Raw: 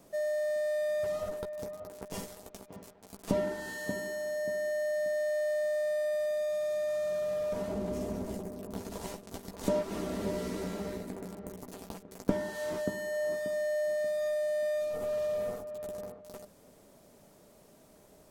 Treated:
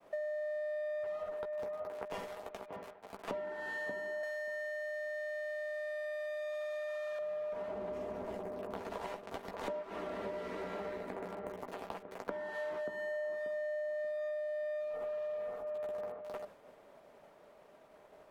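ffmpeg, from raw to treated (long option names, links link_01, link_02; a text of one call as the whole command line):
ffmpeg -i in.wav -filter_complex "[0:a]asettb=1/sr,asplit=3[link_01][link_02][link_03];[link_01]atrim=end=4.234[link_04];[link_02]atrim=start=4.23:end=7.19,asetpts=PTS-STARTPTS,afade=type=in:duration=0.004:curve=qsin,afade=type=out:start_time=2.956:duration=0.004:curve=qsin,tiltshelf=frequency=700:gain=-9.5[link_05];[link_03]atrim=start=7.186[link_06];[link_04][link_05]acrossfade=duration=0.004:curve1=hsin:curve2=qsin[link_07];[link_07][link_06]acrossfade=duration=0.004:curve1=qsin:curve2=hsin,agate=range=-33dB:threshold=-54dB:ratio=3:detection=peak,acrossover=split=460 3000:gain=0.178 1 0.0891[link_08][link_09][link_10];[link_08][link_09][link_10]amix=inputs=3:normalize=0,acompressor=threshold=-45dB:ratio=12,volume=8dB" out.wav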